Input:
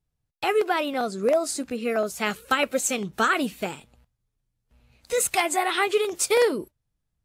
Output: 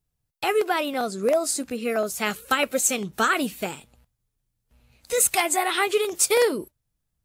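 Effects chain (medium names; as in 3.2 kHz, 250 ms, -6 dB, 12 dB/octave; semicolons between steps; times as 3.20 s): treble shelf 7.4 kHz +8.5 dB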